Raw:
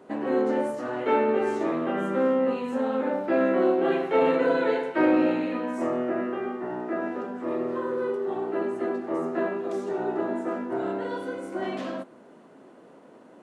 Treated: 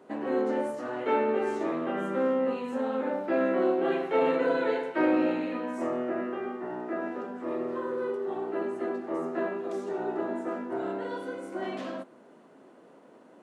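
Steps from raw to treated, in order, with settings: bass shelf 77 Hz -11.5 dB; trim -3 dB

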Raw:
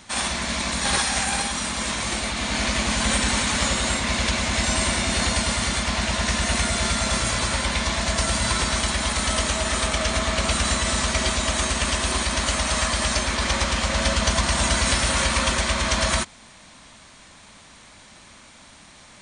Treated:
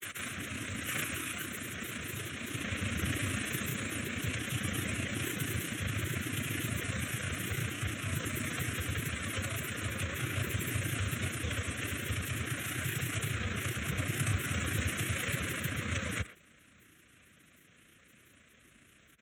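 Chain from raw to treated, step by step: granulator 61 ms, grains 29 per s, pitch spread up and down by 7 st; formant shift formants +4 st; static phaser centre 2 kHz, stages 4; frequency shift +44 Hz; speakerphone echo 120 ms, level -15 dB; trim -8.5 dB

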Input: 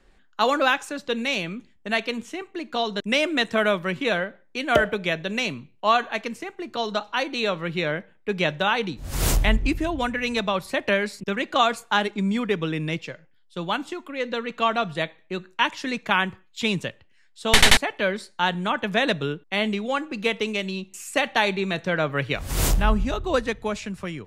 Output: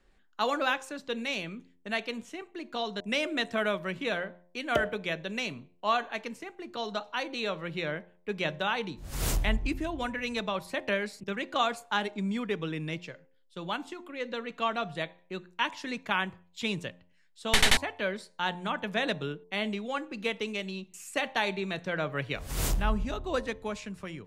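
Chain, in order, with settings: de-hum 88.33 Hz, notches 12; trim -7.5 dB

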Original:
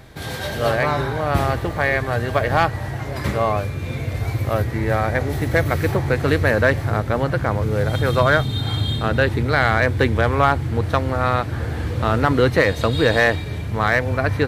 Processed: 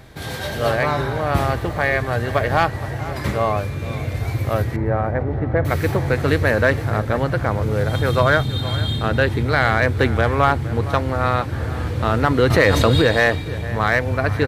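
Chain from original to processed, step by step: 4.76–5.65 s: low-pass 1.2 kHz 12 dB/octave; echo from a far wall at 80 m, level -15 dB; 12.50–13.02 s: level flattener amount 70%

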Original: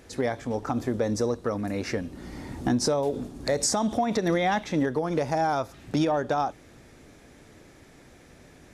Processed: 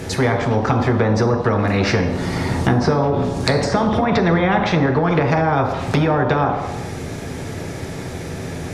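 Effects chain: low-pass that closes with the level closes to 1.5 kHz, closed at -20.5 dBFS; dynamic bell 7 kHz, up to -8 dB, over -57 dBFS, Q 0.83; on a send at -2.5 dB: reverberation RT60 0.70 s, pre-delay 3 ms; on the sum: spectrum-flattening compressor 2:1; trim +3 dB

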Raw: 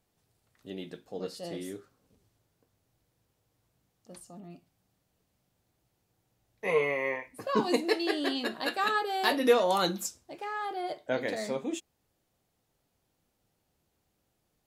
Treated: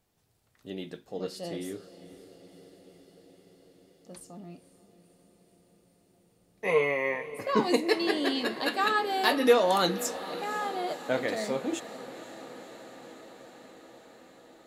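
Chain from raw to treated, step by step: echo that smears into a reverb 512 ms, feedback 74%, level -15.5 dB; trim +2 dB

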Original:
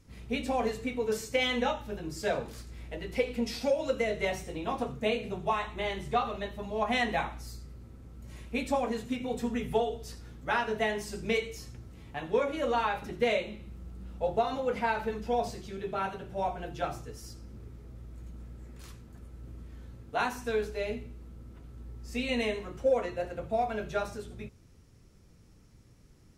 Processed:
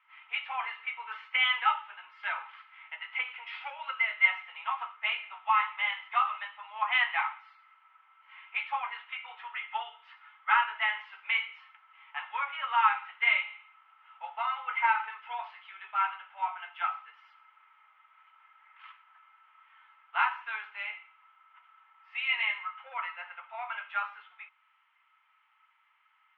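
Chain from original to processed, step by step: Chebyshev band-pass 880–3100 Hz, order 4; small resonant body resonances 1.3/2.1 kHz, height 13 dB, ringing for 90 ms; trim +5 dB

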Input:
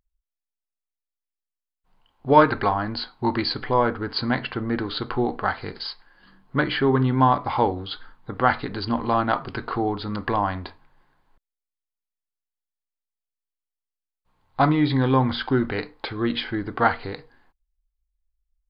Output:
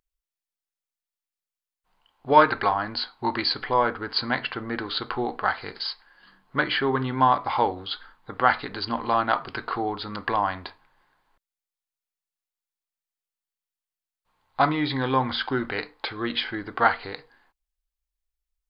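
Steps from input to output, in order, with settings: bass shelf 420 Hz -12 dB; trim +2 dB

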